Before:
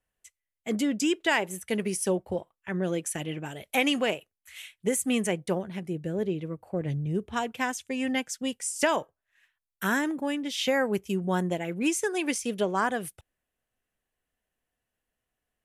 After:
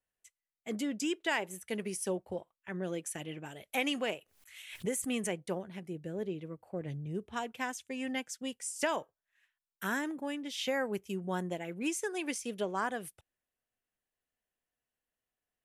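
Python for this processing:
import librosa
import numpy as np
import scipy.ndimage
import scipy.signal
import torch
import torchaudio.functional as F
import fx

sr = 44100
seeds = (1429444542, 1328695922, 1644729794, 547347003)

y = fx.low_shelf(x, sr, hz=130.0, db=-6.0)
y = fx.pre_swell(y, sr, db_per_s=94.0, at=(4.07, 5.32))
y = y * librosa.db_to_amplitude(-7.0)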